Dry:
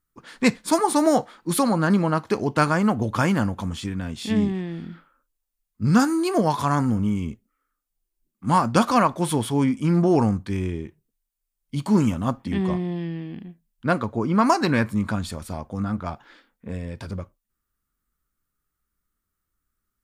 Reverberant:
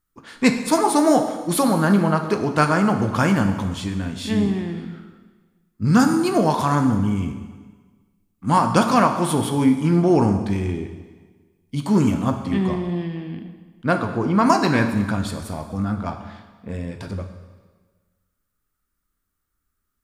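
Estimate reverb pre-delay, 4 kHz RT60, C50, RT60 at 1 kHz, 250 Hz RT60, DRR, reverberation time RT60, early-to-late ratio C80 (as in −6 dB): 9 ms, 1.3 s, 8.5 dB, 1.4 s, 1.4 s, 6.0 dB, 1.4 s, 9.5 dB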